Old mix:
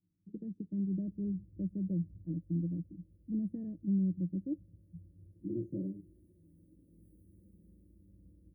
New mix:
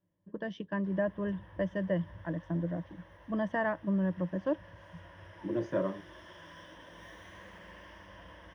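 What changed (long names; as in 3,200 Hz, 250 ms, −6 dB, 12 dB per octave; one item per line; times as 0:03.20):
background +3.5 dB
master: remove inverse Chebyshev band-stop filter 750–5,400 Hz, stop band 50 dB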